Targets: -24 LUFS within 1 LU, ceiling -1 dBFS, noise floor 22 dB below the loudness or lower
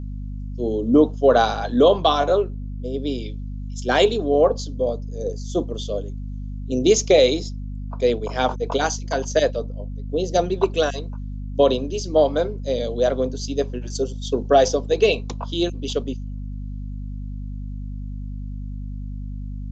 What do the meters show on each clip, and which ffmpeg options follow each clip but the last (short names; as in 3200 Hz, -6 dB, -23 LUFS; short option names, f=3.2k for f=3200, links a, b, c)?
hum 50 Hz; harmonics up to 250 Hz; hum level -28 dBFS; loudness -21.0 LUFS; peak -3.0 dBFS; loudness target -24.0 LUFS
-> -af "bandreject=f=50:t=h:w=4,bandreject=f=100:t=h:w=4,bandreject=f=150:t=h:w=4,bandreject=f=200:t=h:w=4,bandreject=f=250:t=h:w=4"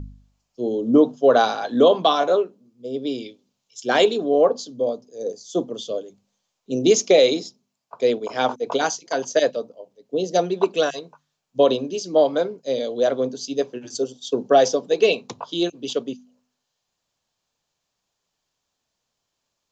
hum none; loudness -21.0 LUFS; peak -3.5 dBFS; loudness target -24.0 LUFS
-> -af "volume=-3dB"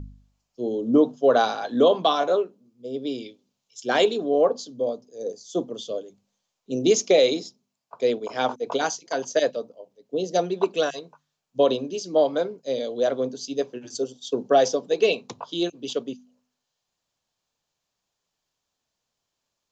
loudness -24.0 LUFS; peak -6.5 dBFS; noise floor -82 dBFS